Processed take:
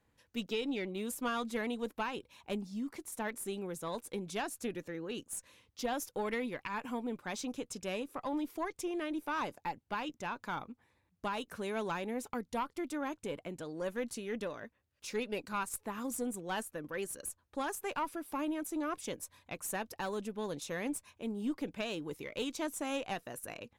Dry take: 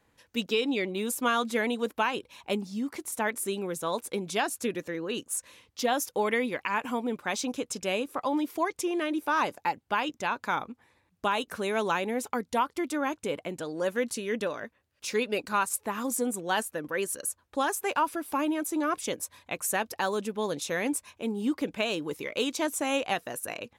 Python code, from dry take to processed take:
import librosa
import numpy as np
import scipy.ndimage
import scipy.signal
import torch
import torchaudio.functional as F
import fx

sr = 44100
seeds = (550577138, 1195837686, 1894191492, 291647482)

y = fx.diode_clip(x, sr, knee_db=-19.0)
y = fx.low_shelf(y, sr, hz=220.0, db=6.5)
y = y * 10.0 ** (-8.5 / 20.0)